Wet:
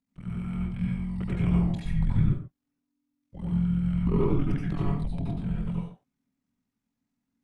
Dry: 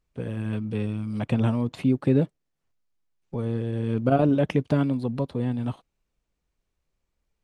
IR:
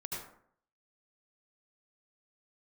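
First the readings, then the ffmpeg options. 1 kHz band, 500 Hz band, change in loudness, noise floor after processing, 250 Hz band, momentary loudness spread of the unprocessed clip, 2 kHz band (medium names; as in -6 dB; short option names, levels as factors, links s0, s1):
-9.0 dB, -9.0 dB, -3.0 dB, -84 dBFS, -3.5 dB, 10 LU, -6.5 dB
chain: -filter_complex "[0:a]tremolo=f=43:d=0.947,afreqshift=-290[s0];[1:a]atrim=start_sample=2205,afade=t=out:st=0.29:d=0.01,atrim=end_sample=13230[s1];[s0][s1]afir=irnorm=-1:irlink=0"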